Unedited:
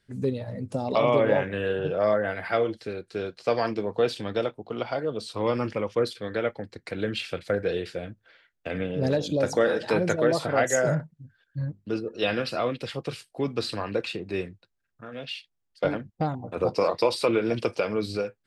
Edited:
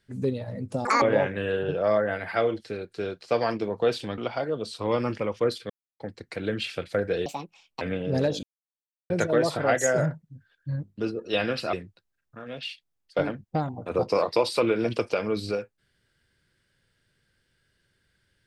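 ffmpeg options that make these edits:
ffmpeg -i in.wav -filter_complex "[0:a]asplit=11[link_01][link_02][link_03][link_04][link_05][link_06][link_07][link_08][link_09][link_10][link_11];[link_01]atrim=end=0.854[link_12];[link_02]atrim=start=0.85:end=1.18,asetpts=PTS-STARTPTS,asetrate=86877,aresample=44100,atrim=end_sample=7387,asetpts=PTS-STARTPTS[link_13];[link_03]atrim=start=1.176:end=4.342[link_14];[link_04]atrim=start=4.728:end=6.25,asetpts=PTS-STARTPTS,afade=type=out:start_time=1.518:duration=0.004:curve=hsin[link_15];[link_05]atrim=start=6.25:end=6.55,asetpts=PTS-STARTPTS,volume=0[link_16];[link_06]atrim=start=6.55:end=7.814,asetpts=PTS-STARTPTS,afade=type=in:duration=0.004:curve=hsin[link_17];[link_07]atrim=start=7.81:end=8.7,asetpts=PTS-STARTPTS,asetrate=71001,aresample=44100,atrim=end_sample=24378,asetpts=PTS-STARTPTS[link_18];[link_08]atrim=start=8.696:end=9.32,asetpts=PTS-STARTPTS,afade=type=out:start_time=0.62:duration=0.004:curve=hsin[link_19];[link_09]atrim=start=9.32:end=9.99,asetpts=PTS-STARTPTS,volume=0[link_20];[link_10]atrim=start=9.99:end=12.622,asetpts=PTS-STARTPTS,afade=type=in:duration=0.004:curve=hsin[link_21];[link_11]atrim=start=14.388[link_22];[link_12][link_13]acrossfade=duration=0.004:curve1=hsin:curve2=hsin[link_23];[link_23][link_14]acrossfade=duration=0.004:curve1=hsin:curve2=hsin[link_24];[link_15][link_16][link_17]concat=n=3:v=0:a=1[link_25];[link_24][link_25]acrossfade=duration=0.004:curve1=hsin:curve2=hsin[link_26];[link_26][link_18]acrossfade=duration=0.004:curve1=hsin:curve2=hsin[link_27];[link_19][link_20][link_21]concat=n=3:v=0:a=1[link_28];[link_27][link_28]acrossfade=duration=0.004:curve1=hsin:curve2=hsin[link_29];[link_29][link_22]acrossfade=duration=0.004:curve1=hsin:curve2=hsin" out.wav

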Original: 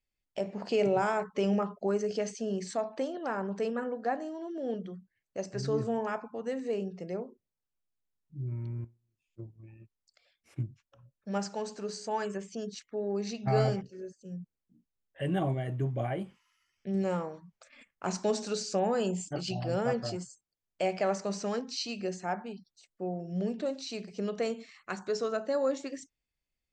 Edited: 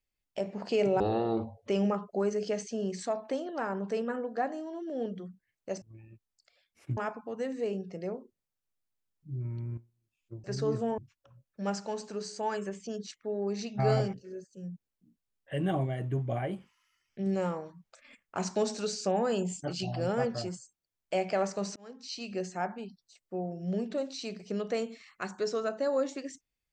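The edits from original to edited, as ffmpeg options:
ffmpeg -i in.wav -filter_complex "[0:a]asplit=8[link_01][link_02][link_03][link_04][link_05][link_06][link_07][link_08];[link_01]atrim=end=1.004[link_09];[link_02]atrim=start=1:end=1.36,asetpts=PTS-STARTPTS,asetrate=23373,aresample=44100[link_10];[link_03]atrim=start=1.356:end=5.502[link_11];[link_04]atrim=start=9.508:end=10.662[link_12];[link_05]atrim=start=6.038:end=9.512[link_13];[link_06]atrim=start=5.498:end=6.042[link_14];[link_07]atrim=start=10.658:end=21.44,asetpts=PTS-STARTPTS,afade=type=out:start_time=10.778:duration=0.004:curve=hsin[link_15];[link_08]atrim=start=21.44,asetpts=PTS-STARTPTS,afade=type=in:duration=0.64[link_16];[link_09][link_10]acrossfade=duration=0.004:curve1=hsin:curve2=hsin[link_17];[link_17][link_11]acrossfade=duration=0.004:curve1=hsin:curve2=hsin[link_18];[link_18][link_12]acrossfade=duration=0.004:curve1=hsin:curve2=hsin[link_19];[link_19][link_13]acrossfade=duration=0.004:curve1=hsin:curve2=hsin[link_20];[link_20][link_14]acrossfade=duration=0.004:curve1=hsin:curve2=hsin[link_21];[link_15][link_16]concat=n=2:v=0:a=1[link_22];[link_21][link_22]acrossfade=duration=0.004:curve1=hsin:curve2=hsin" out.wav

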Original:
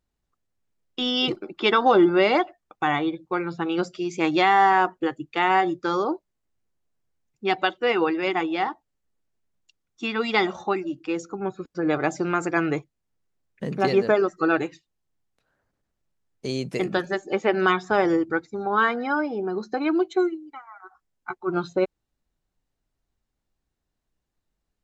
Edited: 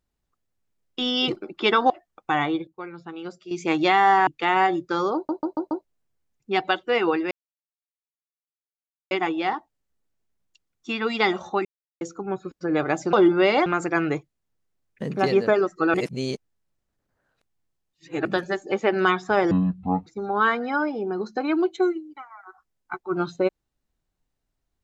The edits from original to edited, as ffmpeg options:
ffmpeg -i in.wav -filter_complex "[0:a]asplit=19[link_01][link_02][link_03][link_04][link_05][link_06][link_07][link_08][link_09][link_10][link_11][link_12][link_13][link_14][link_15][link_16][link_17][link_18][link_19];[link_01]atrim=end=1.902[link_20];[link_02]atrim=start=2.428:end=3.202[link_21];[link_03]atrim=start=3.198:end=4.042,asetpts=PTS-STARTPTS,volume=-10.5dB[link_22];[link_04]atrim=start=4.038:end=4.802[link_23];[link_05]atrim=start=5.208:end=6.232[link_24];[link_06]atrim=start=6.088:end=6.232[link_25];[link_07]atrim=start=6.088:end=6.232[link_26];[link_08]atrim=start=6.088:end=6.232[link_27];[link_09]atrim=start=6.088:end=6.232[link_28];[link_10]atrim=start=6.788:end=8.25,asetpts=PTS-STARTPTS,afade=type=out:start_time=1.458:duration=0.004:curve=hsin,apad=pad_dur=1.8[link_29];[link_11]atrim=start=8.25:end=10.79,asetpts=PTS-STARTPTS,afade=type=in:duration=0.004:curve=hsin,afade=type=out:start_time=2.536:duration=0.004:curve=hsin[link_30];[link_12]atrim=start=10.79:end=11.15,asetpts=PTS-STARTPTS,volume=0[link_31];[link_13]atrim=start=11.15:end=12.272,asetpts=PTS-STARTPTS,afade=type=in:duration=0.004:curve=hsin[link_32];[link_14]atrim=start=1.898:end=2.432[link_33];[link_15]atrim=start=12.268:end=14.552[link_34];[link_16]atrim=start=14.548:end=16.862,asetpts=PTS-STARTPTS,areverse[link_35];[link_17]atrim=start=16.858:end=18.124[link_36];[link_18]atrim=start=18.12:end=18.43,asetpts=PTS-STARTPTS,asetrate=24696,aresample=44100,atrim=end_sample=24412,asetpts=PTS-STARTPTS[link_37];[link_19]atrim=start=18.426[link_38];[link_20][link_21]acrossfade=duration=0.004:curve1=hsin:curve2=hsin[link_39];[link_39][link_22]acrossfade=duration=0.004:curve1=hsin:curve2=hsin[link_40];[link_40][link_23]acrossfade=duration=0.004:curve1=hsin:curve2=hsin[link_41];[link_41][link_24]acrossfade=duration=0.004:curve1=hsin:curve2=hsin[link_42];[link_42][link_25]acrossfade=duration=0.004:curve1=hsin:curve2=hsin[link_43];[link_43][link_26]acrossfade=duration=0.004:curve1=hsin:curve2=hsin[link_44];[link_44][link_27]acrossfade=duration=0.004:curve1=hsin:curve2=hsin[link_45];[link_45][link_28]acrossfade=duration=0.004:curve1=hsin:curve2=hsin[link_46];[link_29][link_30][link_31][link_32]concat=n=4:v=0:a=1[link_47];[link_46][link_47]acrossfade=duration=0.004:curve1=hsin:curve2=hsin[link_48];[link_48][link_33]acrossfade=duration=0.004:curve1=hsin:curve2=hsin[link_49];[link_49][link_34]acrossfade=duration=0.004:curve1=hsin:curve2=hsin[link_50];[link_50][link_35]acrossfade=duration=0.004:curve1=hsin:curve2=hsin[link_51];[link_51][link_36]acrossfade=duration=0.004:curve1=hsin:curve2=hsin[link_52];[link_52][link_37]acrossfade=duration=0.004:curve1=hsin:curve2=hsin[link_53];[link_53][link_38]acrossfade=duration=0.004:curve1=hsin:curve2=hsin" out.wav

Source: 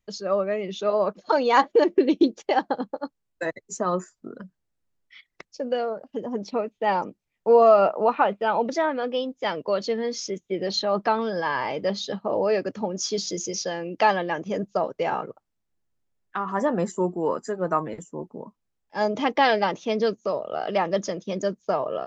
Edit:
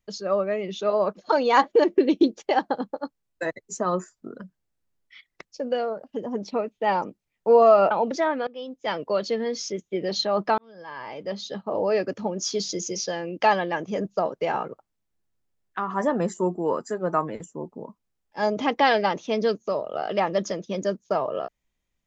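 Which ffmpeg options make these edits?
ffmpeg -i in.wav -filter_complex "[0:a]asplit=4[link_01][link_02][link_03][link_04];[link_01]atrim=end=7.912[link_05];[link_02]atrim=start=8.488:end=9.05,asetpts=PTS-STARTPTS,afade=type=out:start_time=0.558:duration=0.004:curve=hsin:silence=0.0944061[link_06];[link_03]atrim=start=9.05:end=11.16,asetpts=PTS-STARTPTS,afade=type=in:duration=0.48:silence=0.0944061,afade=type=out:start_time=2.106:duration=0.004:curve=hsin[link_07];[link_04]atrim=start=11.16,asetpts=PTS-STARTPTS,afade=type=in:duration=1.4[link_08];[link_06][link_07][link_08]concat=n=3:v=0:a=1[link_09];[link_05][link_09]acrossfade=duration=0.004:curve1=hsin:curve2=hsin" out.wav

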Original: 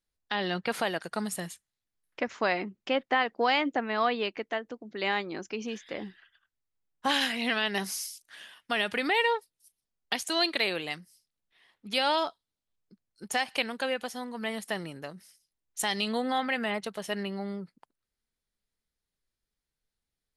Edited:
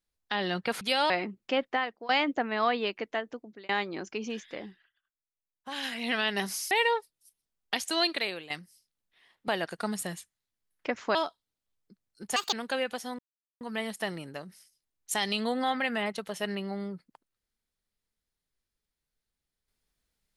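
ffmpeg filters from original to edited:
ffmpeg -i in.wav -filter_complex "[0:a]asplit=14[link_01][link_02][link_03][link_04][link_05][link_06][link_07][link_08][link_09][link_10][link_11][link_12][link_13][link_14];[link_01]atrim=end=0.812[link_15];[link_02]atrim=start=11.868:end=12.162[link_16];[link_03]atrim=start=2.478:end=3.47,asetpts=PTS-STARTPTS,afade=type=out:start_time=0.512:duration=0.48:silence=0.0841395[link_17];[link_04]atrim=start=3.47:end=5.07,asetpts=PTS-STARTPTS,afade=type=in:duration=0.004:curve=hsin:silence=0.0841395,afade=type=out:start_time=1.28:duration=0.32[link_18];[link_05]atrim=start=5.07:end=6.28,asetpts=PTS-STARTPTS,afade=type=in:duration=0.004:curve=hsin,afade=type=out:start_time=0.71:duration=0.5:silence=0.223872[link_19];[link_06]atrim=start=6.28:end=7.08,asetpts=PTS-STARTPTS,volume=-13dB[link_20];[link_07]atrim=start=7.08:end=8.092,asetpts=PTS-STARTPTS,afade=type=in:duration=0.5:silence=0.223872[link_21];[link_08]atrim=start=9.098:end=10.89,asetpts=PTS-STARTPTS,afade=type=out:start_time=1.322:duration=0.47:silence=0.237137[link_22];[link_09]atrim=start=10.89:end=11.872,asetpts=PTS-STARTPTS,afade=type=in:duration=0.004:curve=hsin:silence=0.237137[link_23];[link_10]atrim=start=0.808:end=2.482[link_24];[link_11]atrim=start=12.158:end=13.374[link_25];[link_12]atrim=start=13.37:end=13.63,asetpts=PTS-STARTPTS,asetrate=68355,aresample=44100,atrim=end_sample=7397,asetpts=PTS-STARTPTS[link_26];[link_13]atrim=start=13.626:end=14.29,asetpts=PTS-STARTPTS,afade=type=out:start_time=0.66:duration=0.004:curve=hsin,apad=pad_dur=0.42[link_27];[link_14]atrim=start=14.29,asetpts=PTS-STARTPTS,afade=type=in:duration=0.004:curve=hsin[link_28];[link_15][link_16]acrossfade=duration=0.004:curve1=hsin:curve2=hsin[link_29];[link_17][link_18][link_19][link_20][link_21]concat=n=5:v=0:a=1[link_30];[link_29][link_30]acrossfade=duration=0.004:curve1=hsin:curve2=hsin[link_31];[link_22][link_23]concat=n=2:v=0:a=1[link_32];[link_31][link_32]acrossfade=duration=0.004:curve1=hsin:curve2=hsin[link_33];[link_33][link_24]acrossfade=duration=0.004:curve1=hsin:curve2=hsin[link_34];[link_34][link_25]acrossfade=duration=0.004:curve1=hsin:curve2=hsin[link_35];[link_35][link_26]acrossfade=duration=0.004:curve1=hsin:curve2=hsin[link_36];[link_27][link_28]concat=n=2:v=0:a=1[link_37];[link_36][link_37]acrossfade=duration=0.004:curve1=hsin:curve2=hsin" out.wav

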